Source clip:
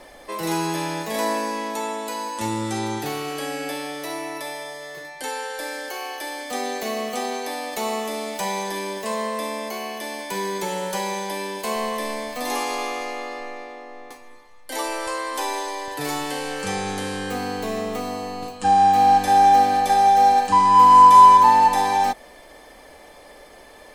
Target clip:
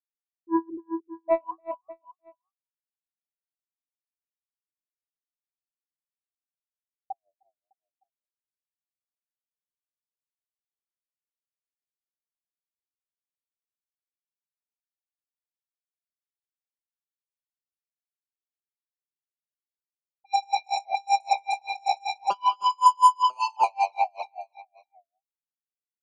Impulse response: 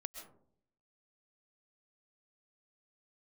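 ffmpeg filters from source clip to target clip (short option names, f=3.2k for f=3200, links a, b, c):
-filter_complex "[0:a]afftfilt=real='re*gte(hypot(re,im),0.501)':imag='im*gte(hypot(re,im),0.501)':win_size=1024:overlap=0.75,lowpass=f=3.8k:w=0.5412,lowpass=f=3.8k:w=1.3066,flanger=delay=8:depth=3.2:regen=-84:speed=2:shape=triangular,equalizer=f=170:t=o:w=0.32:g=-12.5,atempo=0.92,acrossover=split=690[a][b];[a]aeval=exprs='0.1*sin(PI/2*7.94*val(0)/0.1)':c=same[c];[c][b]amix=inputs=2:normalize=0,tiltshelf=f=1.1k:g=10,asplit=2[d][e];[e]aecho=0:1:303|606|909:0.335|0.1|0.0301[f];[d][f]amix=inputs=2:normalize=0,aeval=exprs='val(0)*pow(10,-38*(0.5-0.5*cos(2*PI*5.2*n/s))/20)':c=same"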